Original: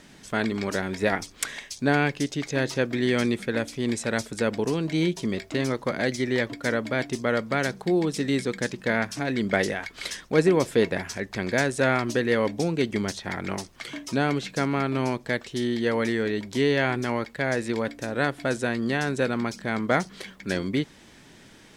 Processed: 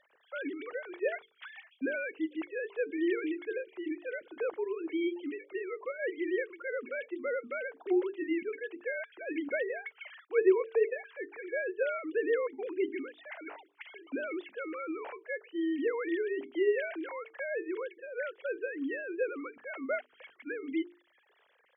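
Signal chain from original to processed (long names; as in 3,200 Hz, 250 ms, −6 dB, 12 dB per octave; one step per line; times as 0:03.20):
three sine waves on the formant tracks
mains-hum notches 50/100/150/200/250/300/350/400/450 Hz
level −8 dB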